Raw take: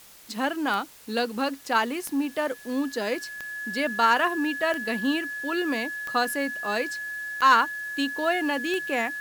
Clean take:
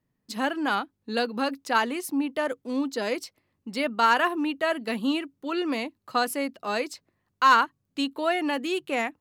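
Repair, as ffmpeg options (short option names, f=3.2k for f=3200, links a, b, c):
-af "adeclick=t=4,bandreject=f=1.7k:w=30,afwtdn=0.0032"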